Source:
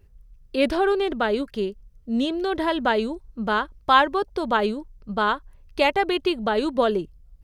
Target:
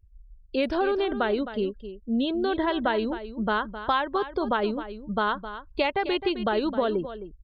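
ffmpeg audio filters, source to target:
ffmpeg -i in.wav -filter_complex "[0:a]afftdn=noise_reduction=26:noise_floor=-40,acompressor=threshold=-21dB:ratio=6,asplit=2[link_01][link_02];[link_02]aecho=0:1:262:0.251[link_03];[link_01][link_03]amix=inputs=2:normalize=0" out.wav

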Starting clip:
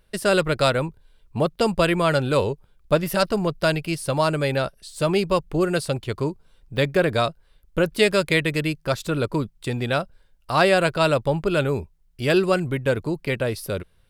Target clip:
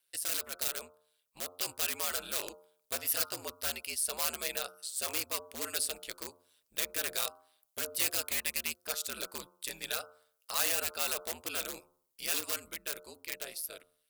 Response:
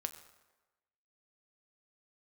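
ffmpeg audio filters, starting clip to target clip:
-af "highpass=54,bandreject=frequency=88.2:width_type=h:width=4,bandreject=frequency=176.4:width_type=h:width=4,bandreject=frequency=264.6:width_type=h:width=4,bandreject=frequency=352.8:width_type=h:width=4,bandreject=frequency=441:width_type=h:width=4,bandreject=frequency=529.2:width_type=h:width=4,bandreject=frequency=617.4:width_type=h:width=4,bandreject=frequency=705.6:width_type=h:width=4,bandreject=frequency=793.8:width_type=h:width=4,bandreject=frequency=882:width_type=h:width=4,bandreject=frequency=970.2:width_type=h:width=4,bandreject=frequency=1058.4:width_type=h:width=4,bandreject=frequency=1146.6:width_type=h:width=4,bandreject=frequency=1234.8:width_type=h:width=4,bandreject=frequency=1323:width_type=h:width=4,bandreject=frequency=1411.2:width_type=h:width=4,aeval=exprs='(mod(5.96*val(0)+1,2)-1)/5.96':channel_layout=same,equalizer=frequency=530:width=7.4:gain=6.5,dynaudnorm=framelen=210:gausssize=17:maxgain=5dB,aderivative,asoftclip=type=tanh:threshold=-19dB,aeval=exprs='val(0)*sin(2*PI*80*n/s)':channel_layout=same"

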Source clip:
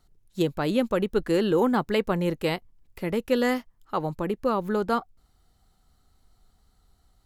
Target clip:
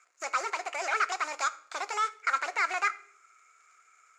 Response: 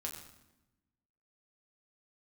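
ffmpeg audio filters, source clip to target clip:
-filter_complex "[0:a]equalizer=frequency=790:width=2.2:gain=9,alimiter=limit=-19.5dB:level=0:latency=1:release=222,acrusher=bits=3:mode=log:mix=0:aa=0.000001,volume=27dB,asoftclip=hard,volume=-27dB,highpass=frequency=340:width=0.5412,highpass=frequency=340:width=1.3066,equalizer=frequency=350:width_type=q:width=4:gain=-7,equalizer=frequency=510:width_type=q:width=4:gain=-8,equalizer=frequency=750:width_type=q:width=4:gain=7,equalizer=frequency=1300:width_type=q:width=4:gain=9,equalizer=frequency=1900:width_type=q:width=4:gain=-7,equalizer=frequency=4000:width_type=q:width=4:gain=10,lowpass=frequency=4200:width=0.5412,lowpass=frequency=4200:width=1.3066,asplit=2[link_01][link_02];[1:a]atrim=start_sample=2205,highshelf=frequency=6800:gain=10.5[link_03];[link_02][link_03]afir=irnorm=-1:irlink=0,volume=-6.5dB[link_04];[link_01][link_04]amix=inputs=2:normalize=0,asetrate=76440,aresample=44100"

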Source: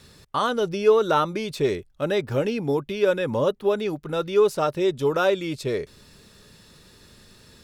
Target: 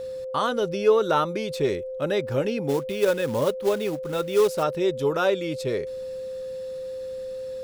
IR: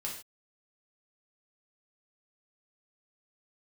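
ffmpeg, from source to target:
-filter_complex "[0:a]asplit=3[link_01][link_02][link_03];[link_01]afade=type=out:start_time=2.68:duration=0.02[link_04];[link_02]acrusher=bits=4:mode=log:mix=0:aa=0.000001,afade=type=in:start_time=2.68:duration=0.02,afade=type=out:start_time=4.62:duration=0.02[link_05];[link_03]afade=type=in:start_time=4.62:duration=0.02[link_06];[link_04][link_05][link_06]amix=inputs=3:normalize=0,aeval=exprs='val(0)+0.0355*sin(2*PI*520*n/s)':channel_layout=same,volume=-1.5dB"

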